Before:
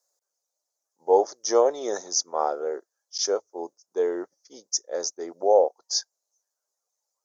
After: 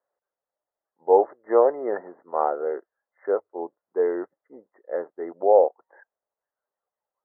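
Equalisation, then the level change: brick-wall FIR low-pass 2.1 kHz; +2.0 dB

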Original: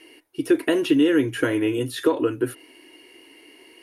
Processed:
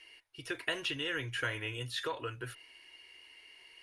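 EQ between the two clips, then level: distance through air 79 m; amplifier tone stack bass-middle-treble 10-0-10; bass shelf 310 Hz +5 dB; 0.0 dB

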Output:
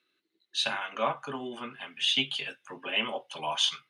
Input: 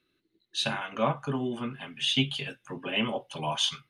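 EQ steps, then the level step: frequency weighting A; 0.0 dB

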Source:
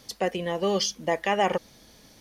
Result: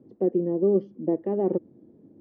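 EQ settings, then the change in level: high-pass 97 Hz 24 dB/octave; resonant low-pass 340 Hz, resonance Q 3.8; distance through air 74 m; 0.0 dB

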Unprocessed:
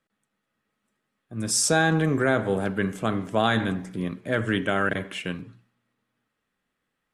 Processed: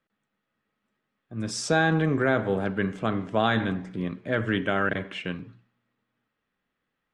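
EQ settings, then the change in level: low-pass 4.3 kHz 12 dB/octave; -1.0 dB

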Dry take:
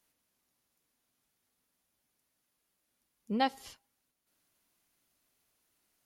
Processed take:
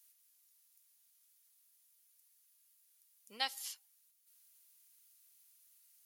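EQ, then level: differentiator; bass shelf 340 Hz -9.5 dB; +8.5 dB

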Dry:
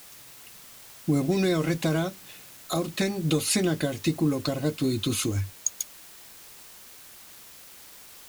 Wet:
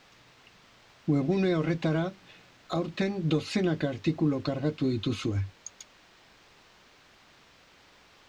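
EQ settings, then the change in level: distance through air 190 m; -1.5 dB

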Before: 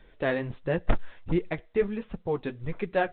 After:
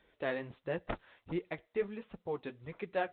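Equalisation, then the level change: high-pass 43 Hz; bass shelf 220 Hz -9.5 dB; peaking EQ 1.6 kHz -2.5 dB 0.21 oct; -6.5 dB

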